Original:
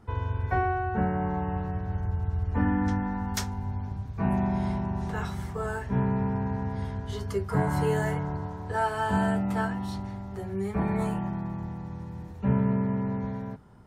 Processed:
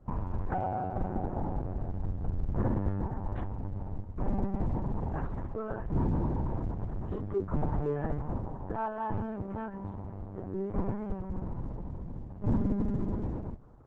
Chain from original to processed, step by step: de-hum 115.2 Hz, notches 2; LPC vocoder at 8 kHz pitch kept; soft clip -20 dBFS, distortion -15 dB; LPF 1000 Hz 12 dB/oct; Opus 10 kbps 48000 Hz

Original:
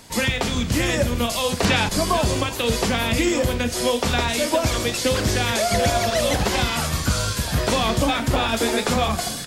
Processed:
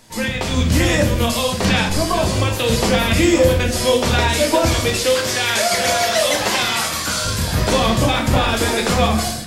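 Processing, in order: 4.95–7.25 HPF 690 Hz 6 dB/oct; AGC; flange 0.75 Hz, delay 8 ms, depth 4.2 ms, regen +58%; shoebox room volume 93 m³, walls mixed, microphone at 0.55 m

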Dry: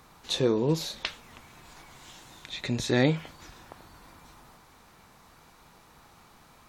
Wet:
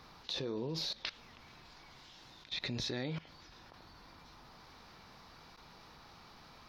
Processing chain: resonant high shelf 6300 Hz -8.5 dB, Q 3; level quantiser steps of 19 dB

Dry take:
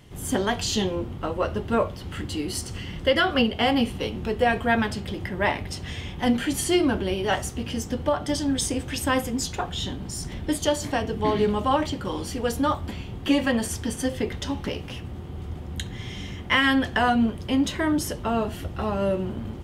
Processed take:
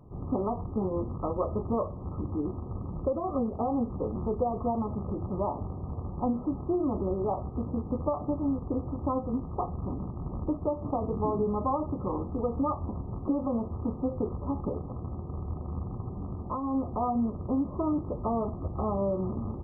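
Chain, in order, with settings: rattling part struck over -31 dBFS, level -19 dBFS; compressor, threshold -23 dBFS, peak gain reduction 8 dB; brick-wall FIR low-pass 1300 Hz; gain -1 dB

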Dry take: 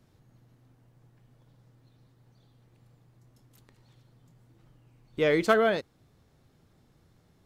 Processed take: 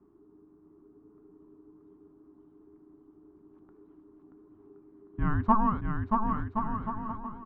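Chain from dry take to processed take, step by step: tilt -2 dB/oct; frequency shift -430 Hz; synth low-pass 1100 Hz, resonance Q 3.6; on a send: bouncing-ball echo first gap 0.63 s, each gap 0.7×, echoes 5; on the sum: gain -5 dB

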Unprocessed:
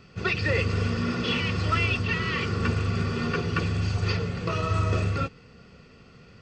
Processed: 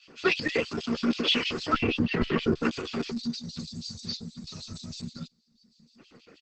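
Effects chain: LFO high-pass square 6.3 Hz 280–3300 Hz; reverb removal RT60 1.2 s; 1.73–2.63 tilt -4 dB/oct; 3.1–5.99 spectral gain 250–3500 Hz -22 dB; doubler 13 ms -9.5 dB; Opus 10 kbps 48000 Hz

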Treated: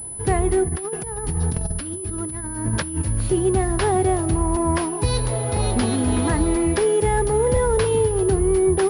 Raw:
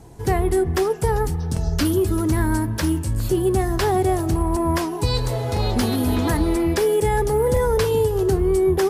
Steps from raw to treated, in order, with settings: 0.68–3.02 negative-ratio compressor -25 dBFS, ratio -0.5; pulse-width modulation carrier 10000 Hz

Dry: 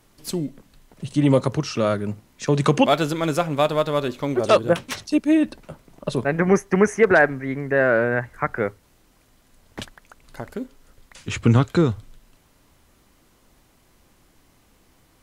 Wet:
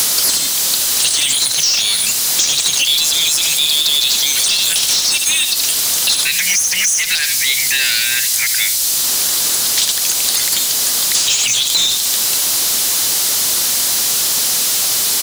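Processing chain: inverse Chebyshev high-pass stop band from 1200 Hz, stop band 60 dB; on a send: echo 73 ms -18.5 dB; on the sum: power-law curve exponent 1.4; in parallel at -10.5 dB: sine folder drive 10 dB, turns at -16 dBFS; on the sum: power-law curve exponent 0.35; maximiser +28 dB; three-band squash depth 100%; gain -6.5 dB

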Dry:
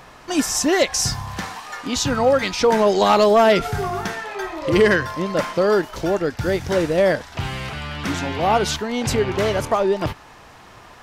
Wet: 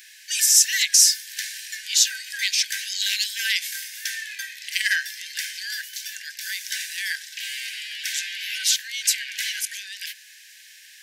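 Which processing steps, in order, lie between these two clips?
brick-wall FIR high-pass 1500 Hz; tilt +4.5 dB/oct; gain -4.5 dB

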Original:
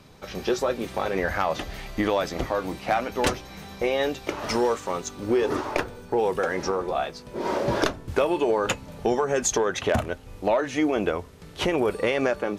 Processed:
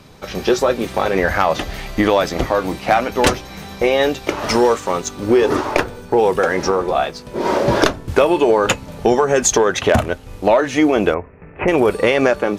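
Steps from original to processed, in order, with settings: in parallel at -11 dB: crossover distortion -42 dBFS; 11.14–11.68 on the sum: rippled Chebyshev low-pass 2600 Hz, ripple 3 dB; gain +7 dB

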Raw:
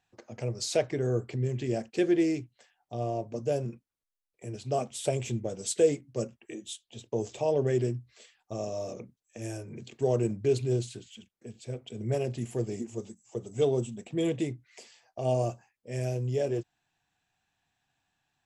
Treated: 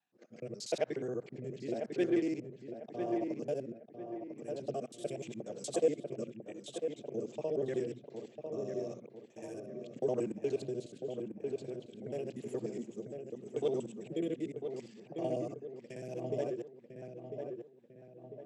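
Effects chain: local time reversal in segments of 60 ms; HPF 170 Hz 24 dB/oct; on a send: darkening echo 0.998 s, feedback 47%, low-pass 1900 Hz, level -5.5 dB; on the sum: rotary speaker horn 0.85 Hz, later 5 Hz, at 15.51; high shelf 5400 Hz -6.5 dB; gain -5 dB

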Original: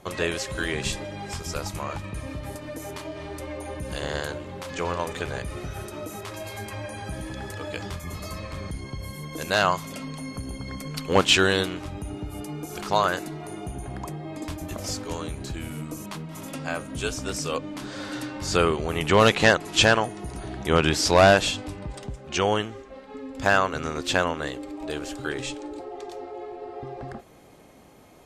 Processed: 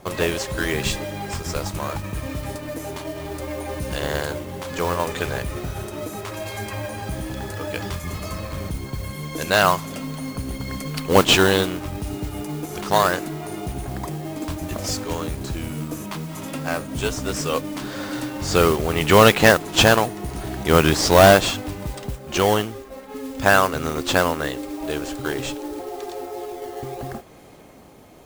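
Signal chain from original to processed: modulation noise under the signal 15 dB; in parallel at -7 dB: decimation with a swept rate 10×, swing 160% 0.72 Hz; on the sum: gain +2 dB

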